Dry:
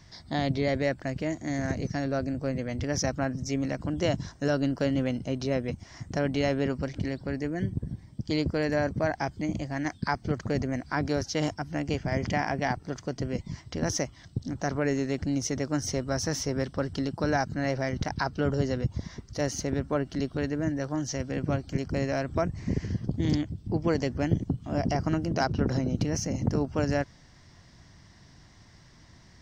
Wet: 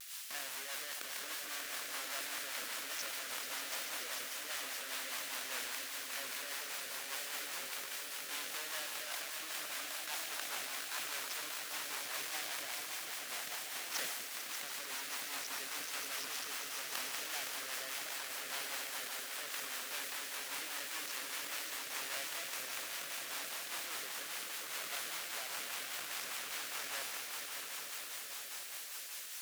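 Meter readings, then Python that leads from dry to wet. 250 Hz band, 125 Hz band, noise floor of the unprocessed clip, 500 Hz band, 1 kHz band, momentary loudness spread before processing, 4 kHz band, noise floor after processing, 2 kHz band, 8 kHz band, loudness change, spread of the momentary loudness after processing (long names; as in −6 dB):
−31.5 dB, below −40 dB, −54 dBFS, −22.0 dB, −11.5 dB, 5 LU, +0.5 dB, −46 dBFS, −4.5 dB, 0.0 dB, −9.5 dB, 2 LU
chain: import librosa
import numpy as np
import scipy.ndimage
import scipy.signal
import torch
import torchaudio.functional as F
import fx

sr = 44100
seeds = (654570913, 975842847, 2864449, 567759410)

y = fx.rattle_buzz(x, sr, strikes_db=-30.0, level_db=-24.0)
y = fx.high_shelf(y, sr, hz=3500.0, db=-9.0)
y = fx.schmitt(y, sr, flips_db=-34.5)
y = fx.over_compress(y, sr, threshold_db=-36.0, ratio=-1.0)
y = fx.echo_swell(y, sr, ms=146, loudest=5, wet_db=-9)
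y = fx.dmg_noise_colour(y, sr, seeds[0], colour='white', level_db=-46.0)
y = scipy.signal.sosfilt(scipy.signal.butter(2, 1400.0, 'highpass', fs=sr, output='sos'), y)
y = fx.vibrato(y, sr, rate_hz=1.4, depth_cents=66.0)
y = fx.rotary(y, sr, hz=5.0)
y = fx.sustainer(y, sr, db_per_s=29.0)
y = y * librosa.db_to_amplitude(2.5)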